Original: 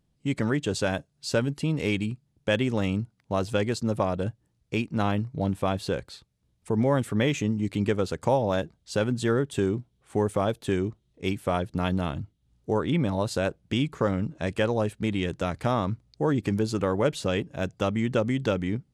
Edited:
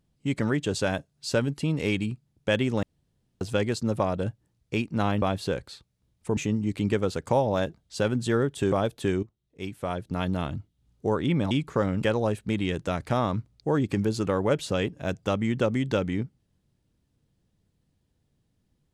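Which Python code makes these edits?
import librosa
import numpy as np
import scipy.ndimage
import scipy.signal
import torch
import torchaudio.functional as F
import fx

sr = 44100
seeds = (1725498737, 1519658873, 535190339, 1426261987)

y = fx.edit(x, sr, fx.room_tone_fill(start_s=2.83, length_s=0.58),
    fx.cut(start_s=5.22, length_s=0.41),
    fx.cut(start_s=6.78, length_s=0.55),
    fx.cut(start_s=9.68, length_s=0.68),
    fx.fade_in_from(start_s=10.87, length_s=1.29, floor_db=-15.5),
    fx.cut(start_s=13.15, length_s=0.61),
    fx.cut(start_s=14.28, length_s=0.29), tone=tone)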